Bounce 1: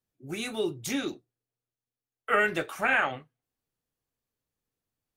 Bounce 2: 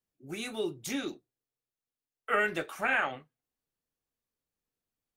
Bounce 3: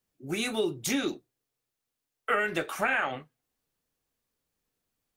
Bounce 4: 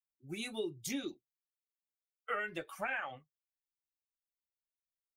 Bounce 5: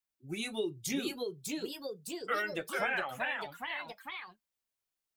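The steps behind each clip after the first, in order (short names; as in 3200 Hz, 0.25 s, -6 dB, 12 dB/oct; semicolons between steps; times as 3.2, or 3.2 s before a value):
bell 110 Hz -8.5 dB 0.4 oct; gain -3.5 dB
compressor 6:1, threshold -31 dBFS, peak gain reduction 8.5 dB; gain +7.5 dB
per-bin expansion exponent 1.5; gain -8 dB
echoes that change speed 0.693 s, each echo +2 st, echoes 3; gain +3.5 dB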